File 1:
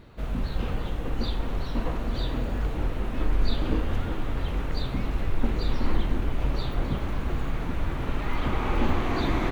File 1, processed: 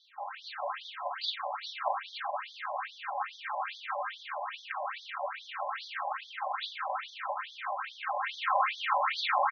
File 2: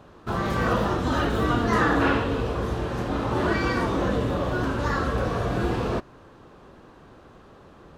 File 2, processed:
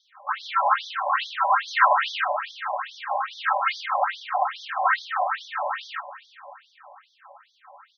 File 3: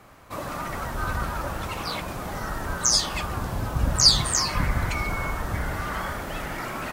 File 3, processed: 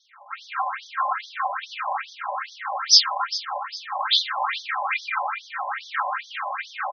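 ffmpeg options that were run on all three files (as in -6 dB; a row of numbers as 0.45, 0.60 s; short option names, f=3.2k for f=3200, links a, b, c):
-filter_complex "[0:a]aeval=exprs='val(0)*sin(2*PI*180*n/s)':c=same,afftfilt=real='re*between(b*sr/4096,550,11000)':imag='im*between(b*sr/4096,550,11000)':win_size=4096:overlap=0.75,asplit=2[a][b];[b]adynamicsmooth=sensitivity=7:basefreq=2k,volume=-1.5dB[c];[a][c]amix=inputs=2:normalize=0,aecho=1:1:3.8:0.83,asplit=2[d][e];[e]aecho=0:1:394|788|1182|1576:0.178|0.0836|0.0393|0.0185[f];[d][f]amix=inputs=2:normalize=0,afftfilt=real='re*between(b*sr/1024,740*pow(4600/740,0.5+0.5*sin(2*PI*2.4*pts/sr))/1.41,740*pow(4600/740,0.5+0.5*sin(2*PI*2.4*pts/sr))*1.41)':imag='im*between(b*sr/1024,740*pow(4600/740,0.5+0.5*sin(2*PI*2.4*pts/sr))/1.41,740*pow(4600/740,0.5+0.5*sin(2*PI*2.4*pts/sr))*1.41)':win_size=1024:overlap=0.75,volume=5.5dB"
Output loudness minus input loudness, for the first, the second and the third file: -4.5, +0.5, +1.0 LU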